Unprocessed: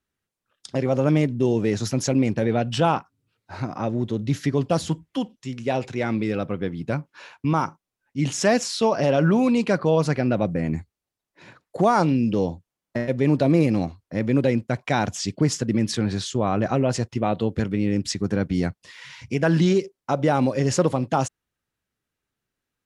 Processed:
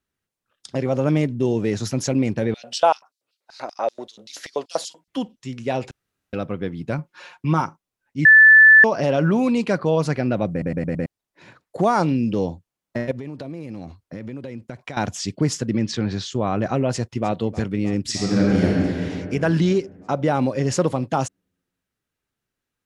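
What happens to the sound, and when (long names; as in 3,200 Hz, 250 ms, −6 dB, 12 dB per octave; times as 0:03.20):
0:02.54–0:05.08: auto-filter high-pass square 5.2 Hz 600–4,600 Hz
0:05.91–0:06.33: fill with room tone
0:06.98–0:07.61: comb filter 5.6 ms, depth 62%
0:08.25–0:08.84: beep over 1,750 Hz −6 dBFS
0:10.51: stutter in place 0.11 s, 5 plays
0:13.11–0:14.97: downward compressor 20 to 1, threshold −28 dBFS
0:15.70–0:16.32: low-pass filter 6,500 Hz 24 dB per octave
0:16.91–0:17.38: delay throw 310 ms, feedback 80%, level −17 dB
0:18.09–0:18.66: thrown reverb, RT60 2.7 s, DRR −5.5 dB
0:19.60–0:20.72: high-shelf EQ 5,700 Hz −4.5 dB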